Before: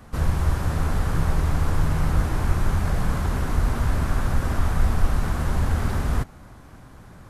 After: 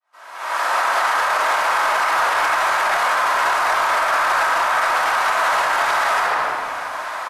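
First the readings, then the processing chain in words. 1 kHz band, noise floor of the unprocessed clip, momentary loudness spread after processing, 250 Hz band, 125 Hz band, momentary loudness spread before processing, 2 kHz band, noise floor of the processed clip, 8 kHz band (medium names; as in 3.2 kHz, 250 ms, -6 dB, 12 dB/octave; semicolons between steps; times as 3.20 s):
+17.0 dB, -46 dBFS, 6 LU, -14.0 dB, under -30 dB, 2 LU, +17.5 dB, -34 dBFS, +9.5 dB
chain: fade-in on the opening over 1.71 s; high-pass 750 Hz 24 dB/octave; in parallel at -10 dB: hard clipper -35.5 dBFS, distortion -10 dB; on the sum: frequency-shifting echo 148 ms, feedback 51%, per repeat -140 Hz, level -24 dB; simulated room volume 1600 m³, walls mixed, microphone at 2.8 m; level rider gain up to 14 dB; low-pass 3.2 kHz 6 dB/octave; peak limiter -17 dBFS, peak gain reduction 12 dB; trim +7 dB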